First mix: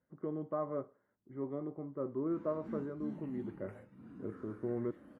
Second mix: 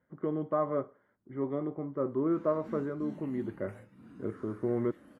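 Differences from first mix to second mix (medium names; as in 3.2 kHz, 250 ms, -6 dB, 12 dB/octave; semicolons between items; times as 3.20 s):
speech +6.0 dB; master: add treble shelf 2.1 kHz +10 dB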